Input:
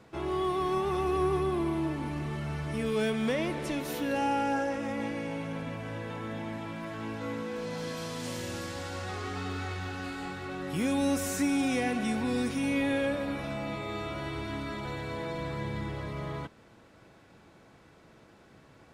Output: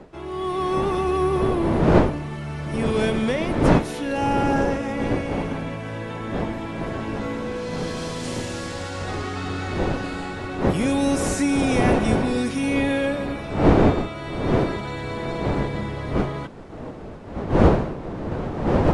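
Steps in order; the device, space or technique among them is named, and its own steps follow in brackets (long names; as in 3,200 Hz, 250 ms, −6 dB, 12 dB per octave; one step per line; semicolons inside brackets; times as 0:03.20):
smartphone video outdoors (wind on the microphone 440 Hz −29 dBFS; automatic gain control gain up to 7.5 dB; level −1 dB; AAC 96 kbit/s 24,000 Hz)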